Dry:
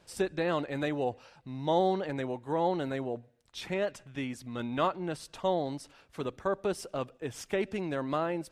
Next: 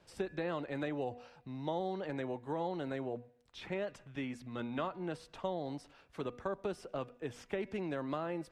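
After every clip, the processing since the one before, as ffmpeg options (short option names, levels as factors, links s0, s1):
-filter_complex "[0:a]highshelf=f=6400:g=-9.5,bandreject=f=243.4:t=h:w=4,bandreject=f=486.8:t=h:w=4,bandreject=f=730.2:t=h:w=4,bandreject=f=973.6:t=h:w=4,bandreject=f=1217:t=h:w=4,bandreject=f=1460.4:t=h:w=4,bandreject=f=1703.8:t=h:w=4,bandreject=f=1947.2:t=h:w=4,bandreject=f=2190.6:t=h:w=4,bandreject=f=2434:t=h:w=4,bandreject=f=2677.4:t=h:w=4,acrossover=split=200|3400[s0][s1][s2];[s0]acompressor=threshold=0.00562:ratio=4[s3];[s1]acompressor=threshold=0.0251:ratio=4[s4];[s2]acompressor=threshold=0.00158:ratio=4[s5];[s3][s4][s5]amix=inputs=3:normalize=0,volume=0.75"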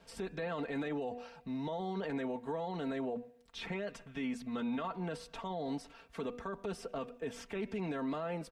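-af "aecho=1:1:4.4:0.71,alimiter=level_in=2.82:limit=0.0631:level=0:latency=1:release=21,volume=0.355,volume=1.41"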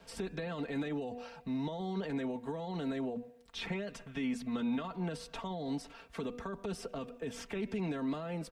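-filter_complex "[0:a]acrossover=split=310|3000[s0][s1][s2];[s1]acompressor=threshold=0.00631:ratio=6[s3];[s0][s3][s2]amix=inputs=3:normalize=0,volume=1.5"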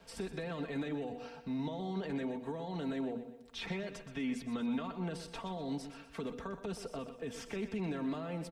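-af "aecho=1:1:123|246|369|492:0.282|0.116|0.0474|0.0194,volume=0.841"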